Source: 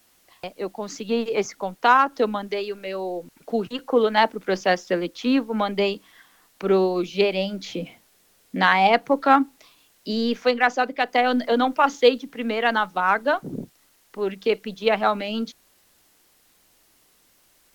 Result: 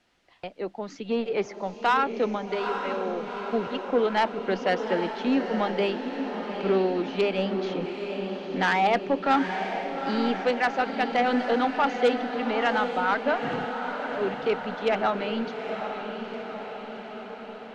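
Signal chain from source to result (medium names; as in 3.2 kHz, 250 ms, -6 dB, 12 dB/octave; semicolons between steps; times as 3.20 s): low-pass 3.4 kHz 12 dB/octave; band-stop 1.1 kHz, Q 11; saturation -13 dBFS, distortion -15 dB; echo that smears into a reverb 843 ms, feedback 64%, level -7 dB; trim -2.5 dB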